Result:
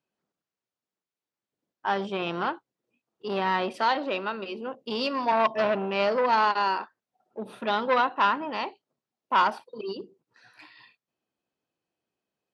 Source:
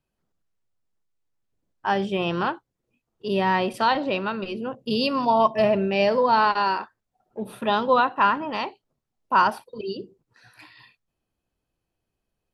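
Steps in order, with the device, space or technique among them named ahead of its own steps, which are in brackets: 3.71–5.32 Bessel high-pass 230 Hz, order 2; public-address speaker with an overloaded transformer (core saturation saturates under 1300 Hz; BPF 210–6700 Hz); gain -2 dB

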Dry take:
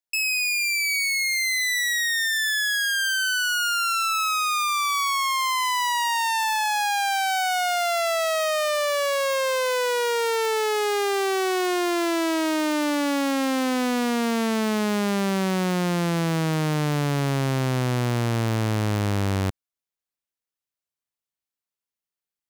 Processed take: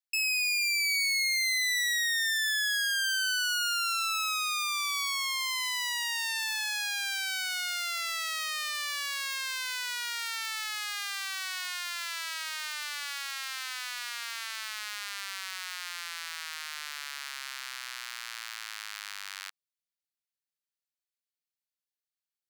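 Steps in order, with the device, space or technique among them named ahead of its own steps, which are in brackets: headphones lying on a table (HPF 1400 Hz 24 dB/oct; bell 4400 Hz +4 dB 0.37 oct); gain -5 dB

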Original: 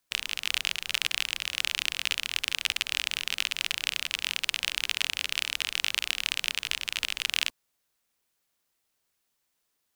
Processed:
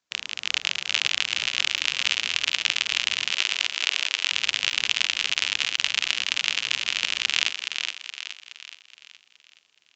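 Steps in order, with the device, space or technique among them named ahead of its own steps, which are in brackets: call with lost packets (HPF 100 Hz 12 dB/oct; downsampling 16000 Hz; AGC gain up to 8 dB; packet loss); 3.32–4.31 HPF 340 Hz 24 dB/oct; thinning echo 0.421 s, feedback 47%, high-pass 340 Hz, level -5.5 dB

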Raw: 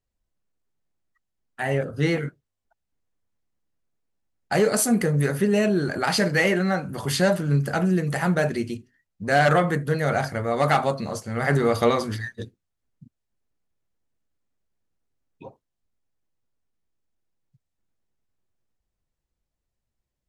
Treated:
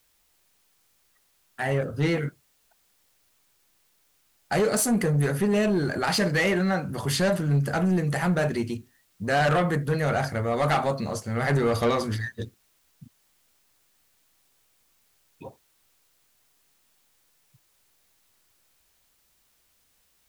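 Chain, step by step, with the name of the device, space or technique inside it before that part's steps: open-reel tape (soft clip -17 dBFS, distortion -14 dB; bell 70 Hz +4.5 dB 1.17 oct; white noise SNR 39 dB)

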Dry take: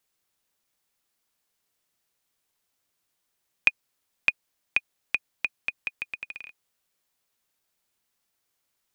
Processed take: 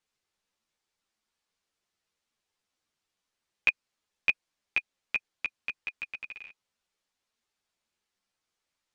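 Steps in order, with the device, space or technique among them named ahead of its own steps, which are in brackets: string-machine ensemble chorus (ensemble effect; LPF 6700 Hz 12 dB/oct)

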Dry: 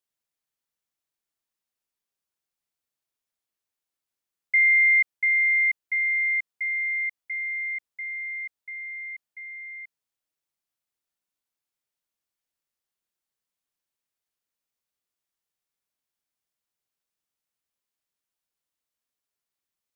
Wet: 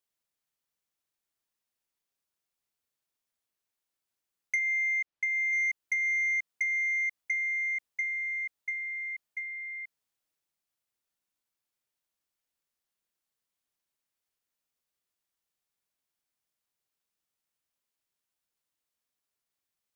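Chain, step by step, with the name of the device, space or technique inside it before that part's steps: drum-bus smash (transient shaper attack +7 dB, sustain +2 dB; compressor 6:1, threshold -25 dBFS, peak gain reduction 12.5 dB; soft clip -22 dBFS, distortion -20 dB); 4.59–5.53 air absorption 110 m

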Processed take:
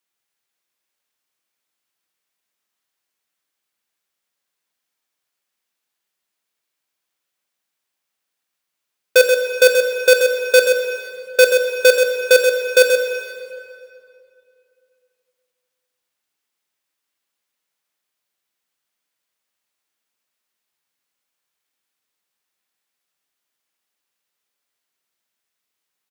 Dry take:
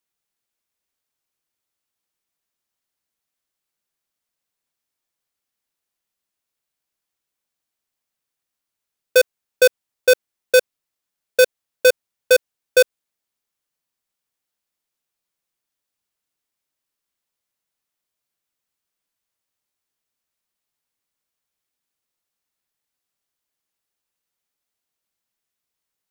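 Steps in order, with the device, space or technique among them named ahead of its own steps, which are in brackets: PA in a hall (HPF 200 Hz 6 dB/oct; bell 2200 Hz +3.5 dB 2.2 oct; echo 0.13 s -7.5 dB; reverb RT60 2.6 s, pre-delay 7 ms, DRR 4.5 dB); gain +1 dB

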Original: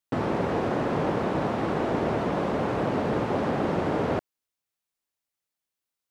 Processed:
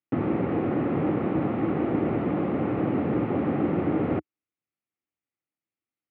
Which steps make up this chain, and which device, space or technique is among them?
bass cabinet (speaker cabinet 76–2300 Hz, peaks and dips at 310 Hz +6 dB, 440 Hz -4 dB, 630 Hz -7 dB, 970 Hz -10 dB, 1600 Hz -9 dB); gain +1.5 dB

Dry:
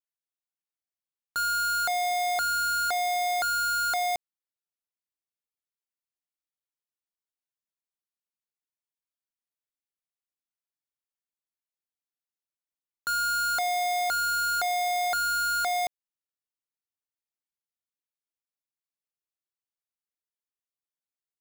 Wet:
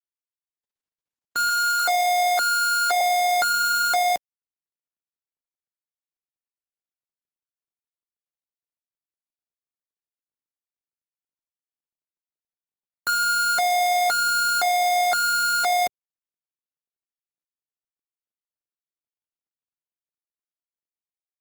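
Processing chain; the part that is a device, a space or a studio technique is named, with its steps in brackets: Wiener smoothing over 41 samples; 1.49–3.01 steep high-pass 260 Hz 72 dB/oct; video call (HPF 150 Hz 12 dB/oct; AGC gain up to 8.5 dB; Opus 16 kbps 48000 Hz)

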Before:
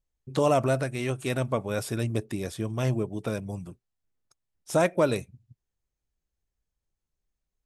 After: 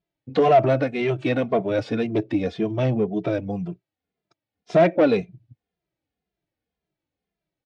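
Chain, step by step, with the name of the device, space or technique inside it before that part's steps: barber-pole flanger into a guitar amplifier (endless flanger 2.5 ms -1.9 Hz; soft clip -23.5 dBFS, distortion -12 dB; speaker cabinet 110–4300 Hz, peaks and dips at 180 Hz +6 dB, 310 Hz +8 dB, 460 Hz +4 dB, 690 Hz +8 dB, 1100 Hz -3 dB, 2200 Hz +3 dB); gain +7.5 dB

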